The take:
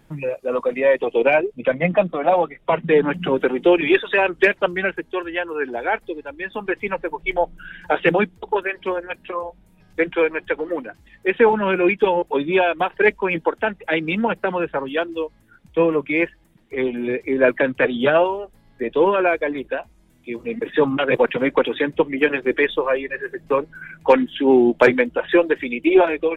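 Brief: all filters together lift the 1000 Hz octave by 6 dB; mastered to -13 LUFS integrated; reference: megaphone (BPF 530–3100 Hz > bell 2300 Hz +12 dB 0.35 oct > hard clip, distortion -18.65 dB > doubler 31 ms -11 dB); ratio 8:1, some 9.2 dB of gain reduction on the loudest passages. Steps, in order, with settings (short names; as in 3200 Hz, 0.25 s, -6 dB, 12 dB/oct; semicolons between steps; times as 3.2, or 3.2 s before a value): bell 1000 Hz +8 dB; compressor 8:1, threshold -13 dBFS; BPF 530–3100 Hz; bell 2300 Hz +12 dB 0.35 oct; hard clip -9.5 dBFS; doubler 31 ms -11 dB; gain +7 dB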